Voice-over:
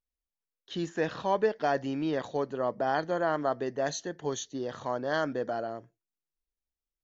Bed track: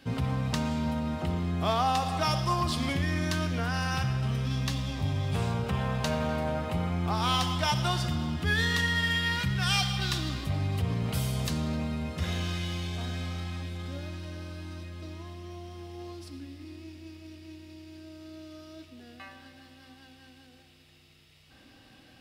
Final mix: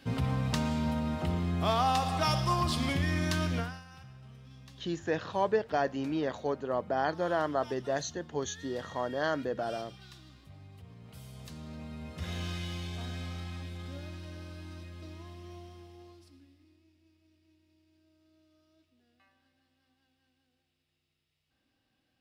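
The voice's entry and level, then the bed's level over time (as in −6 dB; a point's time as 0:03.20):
4.10 s, −1.5 dB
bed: 0:03.59 −1 dB
0:03.84 −22 dB
0:10.95 −22 dB
0:12.44 −4.5 dB
0:15.57 −4.5 dB
0:16.84 −22 dB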